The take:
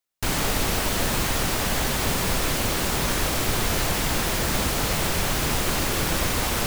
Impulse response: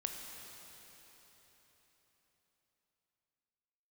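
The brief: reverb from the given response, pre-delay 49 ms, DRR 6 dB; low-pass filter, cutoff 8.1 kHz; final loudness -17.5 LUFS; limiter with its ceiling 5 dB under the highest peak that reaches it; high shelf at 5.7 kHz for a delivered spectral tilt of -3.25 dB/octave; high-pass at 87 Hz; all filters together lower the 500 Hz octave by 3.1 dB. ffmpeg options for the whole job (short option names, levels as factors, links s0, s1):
-filter_complex "[0:a]highpass=87,lowpass=8100,equalizer=f=500:t=o:g=-4,highshelf=f=5700:g=-3.5,alimiter=limit=0.106:level=0:latency=1,asplit=2[s0][s1];[1:a]atrim=start_sample=2205,adelay=49[s2];[s1][s2]afir=irnorm=-1:irlink=0,volume=0.473[s3];[s0][s3]amix=inputs=2:normalize=0,volume=3.16"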